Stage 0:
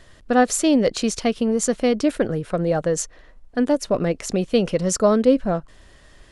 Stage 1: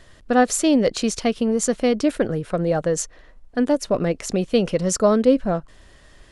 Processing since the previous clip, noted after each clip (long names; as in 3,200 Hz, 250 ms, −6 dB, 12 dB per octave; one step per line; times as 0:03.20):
no processing that can be heard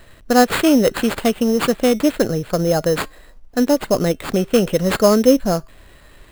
tape wow and flutter 21 cents
tuned comb filter 130 Hz, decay 0.39 s, harmonics odd, mix 30%
sample-rate reduction 5,800 Hz, jitter 0%
level +6.5 dB